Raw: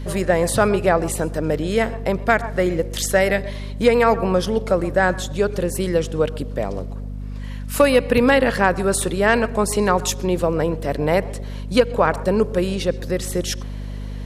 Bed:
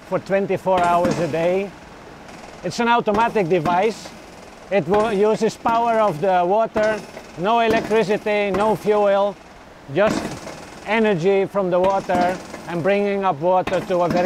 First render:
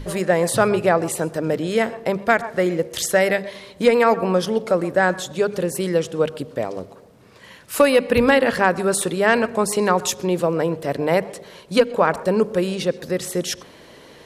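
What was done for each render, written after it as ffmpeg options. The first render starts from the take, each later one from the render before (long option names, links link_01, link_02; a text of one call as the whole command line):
ffmpeg -i in.wav -af "bandreject=frequency=50:width_type=h:width=6,bandreject=frequency=100:width_type=h:width=6,bandreject=frequency=150:width_type=h:width=6,bandreject=frequency=200:width_type=h:width=6,bandreject=frequency=250:width_type=h:width=6" out.wav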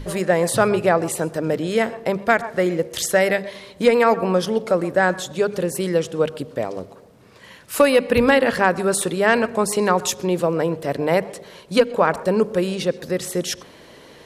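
ffmpeg -i in.wav -af anull out.wav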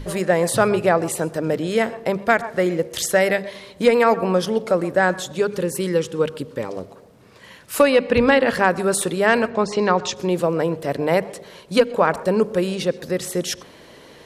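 ffmpeg -i in.wav -filter_complex "[0:a]asettb=1/sr,asplit=3[link_01][link_02][link_03];[link_01]atrim=end=5.404[link_04];[link_02]atrim=start=5.4:end=6.69,asetpts=PTS-STARTPTS,afade=type=in:duration=0.004:curve=qsin,afade=type=out:start_time=1.286:duration=0.004:curve=qsin,asuperstop=centerf=680:order=4:qfactor=3.3[link_05];[link_03]atrim=start=6.686[link_06];[link_04][link_05]acrossfade=duration=0.004:curve1=hsin:curve2=qsin[link_07];[link_07][link_06]acrossfade=duration=0.004:curve1=qsin:curve2=hsin,asettb=1/sr,asplit=3[link_08][link_09][link_10];[link_08]atrim=end=7.834[link_11];[link_09]atrim=start=7.83:end=8.48,asetpts=PTS-STARTPTS,afade=type=in:duration=0.004:curve=qsin,afade=type=out:start_time=0.646:duration=0.004:curve=qsin,lowpass=6200[link_12];[link_10]atrim=start=8.476[link_13];[link_11][link_12]acrossfade=duration=0.004:curve1=hsin:curve2=qsin[link_14];[link_14][link_13]acrossfade=duration=0.004:curve1=qsin:curve2=hsin,asplit=3[link_15][link_16][link_17];[link_15]afade=type=out:start_time=9.48:duration=0.02[link_18];[link_16]lowpass=frequency=5700:width=0.5412,lowpass=frequency=5700:width=1.3066,afade=type=in:start_time=9.48:duration=0.02,afade=type=out:start_time=10.15:duration=0.02[link_19];[link_17]afade=type=in:start_time=10.15:duration=0.02[link_20];[link_18][link_19][link_20]amix=inputs=3:normalize=0" out.wav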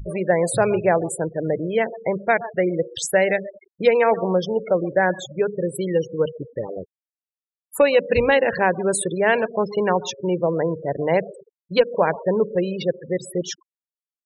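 ffmpeg -i in.wav -af "afftfilt=real='re*gte(hypot(re,im),0.0708)':imag='im*gte(hypot(re,im),0.0708)':win_size=1024:overlap=0.75,equalizer=frequency=250:width_type=o:width=0.33:gain=-11,equalizer=frequency=1250:width_type=o:width=0.33:gain=-11,equalizer=frequency=5000:width_type=o:width=0.33:gain=-6" out.wav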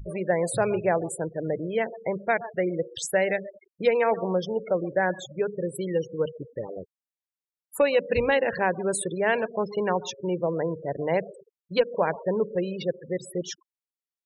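ffmpeg -i in.wav -af "volume=-5.5dB" out.wav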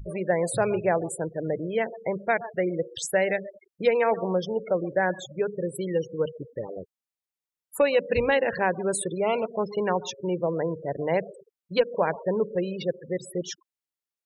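ffmpeg -i in.wav -filter_complex "[0:a]asplit=3[link_01][link_02][link_03];[link_01]afade=type=out:start_time=9.1:duration=0.02[link_04];[link_02]asuperstop=centerf=1700:order=20:qfactor=3,afade=type=in:start_time=9.1:duration=0.02,afade=type=out:start_time=9.57:duration=0.02[link_05];[link_03]afade=type=in:start_time=9.57:duration=0.02[link_06];[link_04][link_05][link_06]amix=inputs=3:normalize=0" out.wav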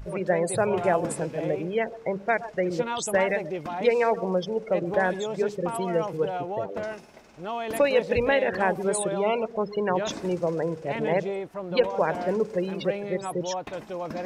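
ffmpeg -i in.wav -i bed.wav -filter_complex "[1:a]volume=-14.5dB[link_01];[0:a][link_01]amix=inputs=2:normalize=0" out.wav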